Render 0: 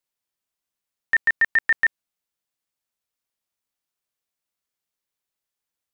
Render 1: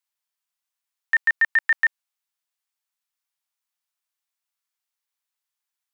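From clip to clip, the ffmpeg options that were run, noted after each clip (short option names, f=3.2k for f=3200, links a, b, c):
-af "highpass=f=780:w=0.5412,highpass=f=780:w=1.3066"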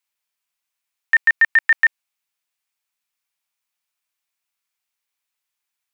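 -af "equalizer=f=2.4k:w=3.2:g=5,volume=3.5dB"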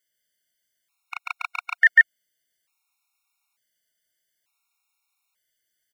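-af "aecho=1:1:143:0.596,alimiter=level_in=10.5dB:limit=-1dB:release=50:level=0:latency=1,afftfilt=real='re*gt(sin(2*PI*0.56*pts/sr)*(1-2*mod(floor(b*sr/1024/720),2)),0)':imag='im*gt(sin(2*PI*0.56*pts/sr)*(1-2*mod(floor(b*sr/1024/720),2)),0)':win_size=1024:overlap=0.75,volume=-4dB"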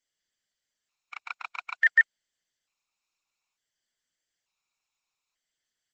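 -af "volume=-5.5dB" -ar 48000 -c:a libopus -b:a 10k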